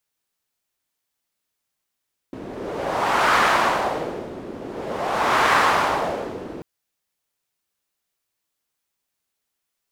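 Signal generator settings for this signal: wind-like swept noise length 4.29 s, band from 340 Hz, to 1.2 kHz, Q 1.7, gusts 2, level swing 17 dB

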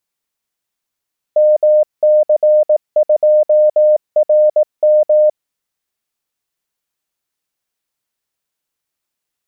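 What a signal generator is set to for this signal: Morse "MC2RM" 18 wpm 608 Hz -6.5 dBFS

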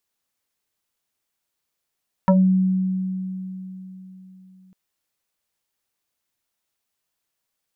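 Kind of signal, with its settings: FM tone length 2.45 s, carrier 187 Hz, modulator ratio 2.04, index 2.6, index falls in 0.24 s exponential, decay 3.82 s, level -10.5 dB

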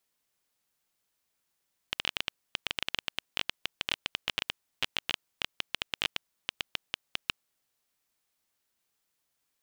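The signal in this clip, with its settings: random clicks 11 per s -10.5 dBFS 5.67 s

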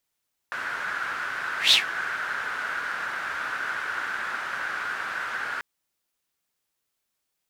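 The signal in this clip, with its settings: whoosh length 5.09 s, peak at 1.20 s, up 0.14 s, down 0.14 s, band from 1.5 kHz, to 3.7 kHz, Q 5.7, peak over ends 15 dB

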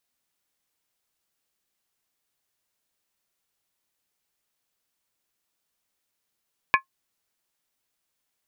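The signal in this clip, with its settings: skin hit, lowest mode 1.07 kHz, modes 4, decay 0.11 s, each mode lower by 1.5 dB, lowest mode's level -12.5 dB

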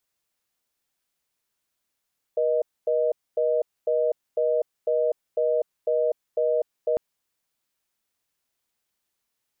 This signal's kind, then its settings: call progress tone reorder tone, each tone -22.5 dBFS 4.60 s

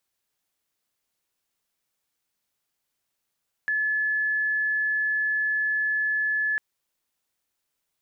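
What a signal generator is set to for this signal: tone sine 1.72 kHz -22 dBFS 2.90 s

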